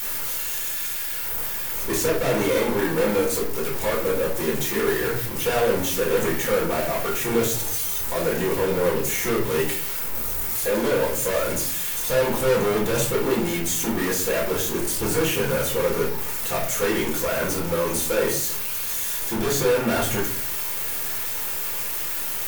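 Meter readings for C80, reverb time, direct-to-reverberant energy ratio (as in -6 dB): 11.0 dB, 0.55 s, -3.5 dB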